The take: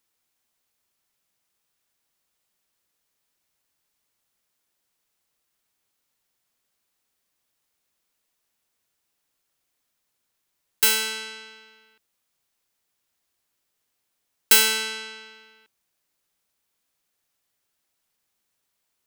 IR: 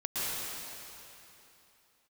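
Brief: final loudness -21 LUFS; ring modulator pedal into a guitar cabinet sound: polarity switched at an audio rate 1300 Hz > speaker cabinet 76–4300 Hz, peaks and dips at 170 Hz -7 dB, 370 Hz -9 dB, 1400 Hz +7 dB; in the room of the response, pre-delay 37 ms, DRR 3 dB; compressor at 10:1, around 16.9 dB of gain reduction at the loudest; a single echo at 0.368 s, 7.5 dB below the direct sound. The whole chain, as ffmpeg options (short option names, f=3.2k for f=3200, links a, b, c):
-filter_complex "[0:a]acompressor=threshold=-28dB:ratio=10,aecho=1:1:368:0.422,asplit=2[a][b];[1:a]atrim=start_sample=2205,adelay=37[c];[b][c]afir=irnorm=-1:irlink=0,volume=-11dB[d];[a][d]amix=inputs=2:normalize=0,aeval=exprs='val(0)*sgn(sin(2*PI*1300*n/s))':c=same,highpass=76,equalizer=f=170:t=q:w=4:g=-7,equalizer=f=370:t=q:w=4:g=-9,equalizer=f=1.4k:t=q:w=4:g=7,lowpass=f=4.3k:w=0.5412,lowpass=f=4.3k:w=1.3066,volume=15.5dB"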